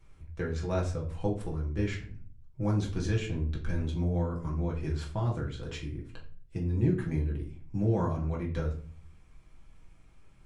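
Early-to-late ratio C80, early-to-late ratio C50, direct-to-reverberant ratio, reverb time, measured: 13.0 dB, 9.0 dB, −3.0 dB, 0.45 s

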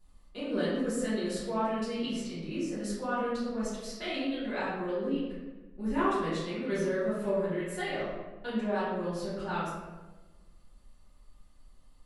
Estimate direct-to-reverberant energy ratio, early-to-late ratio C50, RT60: −12.5 dB, −1.5 dB, 1.2 s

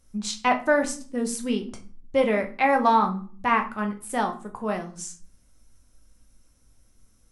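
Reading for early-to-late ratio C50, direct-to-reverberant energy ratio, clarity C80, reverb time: 13.0 dB, 3.5 dB, 18.0 dB, 0.45 s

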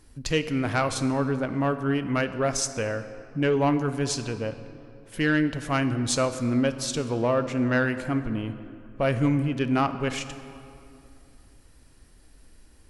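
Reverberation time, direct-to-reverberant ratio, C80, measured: 2.6 s, 10.5 dB, 12.5 dB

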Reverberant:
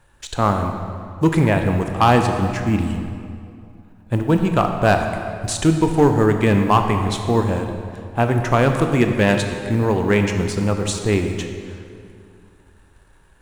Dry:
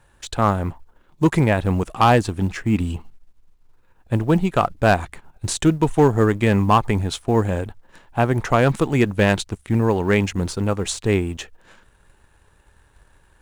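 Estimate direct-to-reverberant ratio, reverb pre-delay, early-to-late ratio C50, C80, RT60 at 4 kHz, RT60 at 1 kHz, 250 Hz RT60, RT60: 4.5 dB, 21 ms, 6.0 dB, 6.5 dB, 1.7 s, 2.4 s, 2.7 s, 2.4 s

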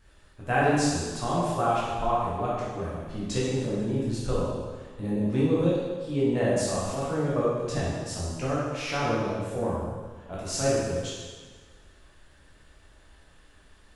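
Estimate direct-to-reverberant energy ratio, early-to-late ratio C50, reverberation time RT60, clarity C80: −8.0 dB, −2.0 dB, 1.5 s, 0.5 dB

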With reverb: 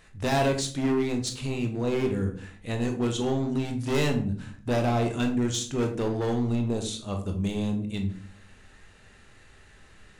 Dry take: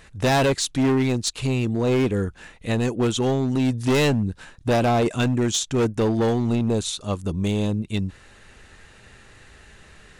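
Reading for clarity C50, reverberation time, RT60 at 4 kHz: 9.5 dB, 0.50 s, 0.30 s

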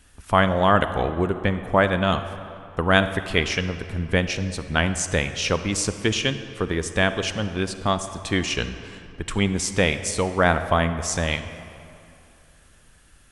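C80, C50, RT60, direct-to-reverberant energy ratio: 11.5 dB, 10.5 dB, 2.7 s, 10.0 dB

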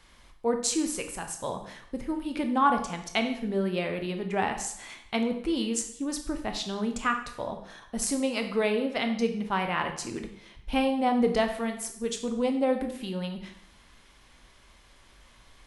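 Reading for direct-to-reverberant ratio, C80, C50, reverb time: 5.0 dB, 11.5 dB, 8.5 dB, 0.70 s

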